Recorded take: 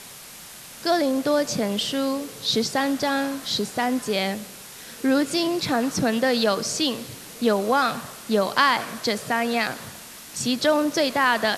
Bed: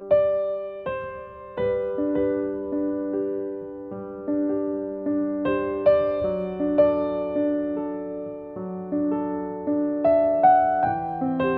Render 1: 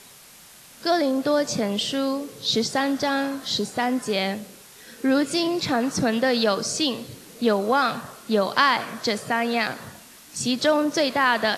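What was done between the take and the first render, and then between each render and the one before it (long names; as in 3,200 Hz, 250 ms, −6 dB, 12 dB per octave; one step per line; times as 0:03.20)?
noise reduction from a noise print 6 dB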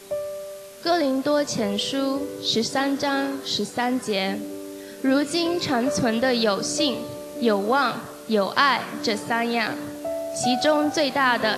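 mix in bed −10 dB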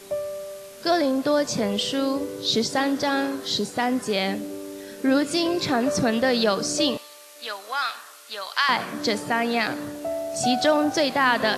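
0:06.97–0:08.69: high-pass filter 1,400 Hz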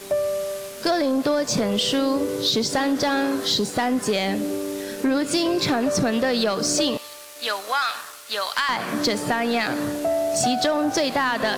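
downward compressor, threshold −25 dBFS, peak gain reduction 10 dB
leveller curve on the samples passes 2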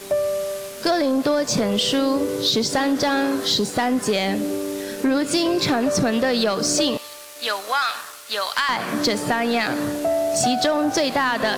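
level +1.5 dB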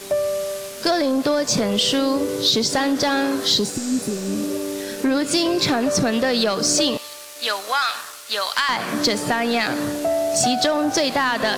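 0:03.76–0:04.58: healed spectral selection 420–8,900 Hz both
parametric band 5,700 Hz +3 dB 2.1 octaves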